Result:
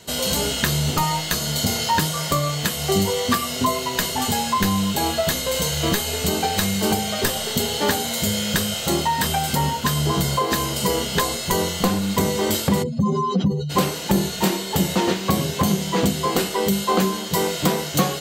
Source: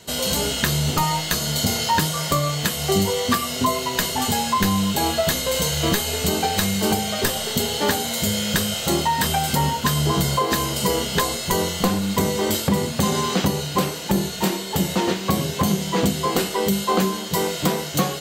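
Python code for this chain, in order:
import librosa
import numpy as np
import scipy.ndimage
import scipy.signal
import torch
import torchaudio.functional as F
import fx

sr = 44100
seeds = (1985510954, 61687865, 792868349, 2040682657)

y = fx.spec_expand(x, sr, power=2.3, at=(12.82, 13.69), fade=0.02)
y = fx.rider(y, sr, range_db=10, speed_s=2.0)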